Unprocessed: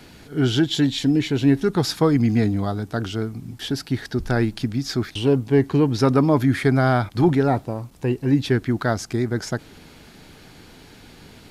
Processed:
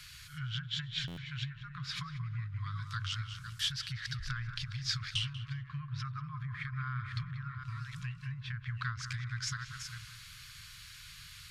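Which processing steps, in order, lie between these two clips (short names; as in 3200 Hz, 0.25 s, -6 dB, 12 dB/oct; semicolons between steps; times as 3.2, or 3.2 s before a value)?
reverse delay 0.402 s, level -11 dB; treble ducked by the level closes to 1400 Hz, closed at -15 dBFS; compressor, threshold -23 dBFS, peak gain reduction 11 dB; brick-wall FIR band-stop 160–1000 Hz; passive tone stack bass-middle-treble 5-5-5; tape echo 0.188 s, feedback 70%, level -6 dB, low-pass 1100 Hz; stuck buffer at 1.07, samples 512, times 8; gain +7 dB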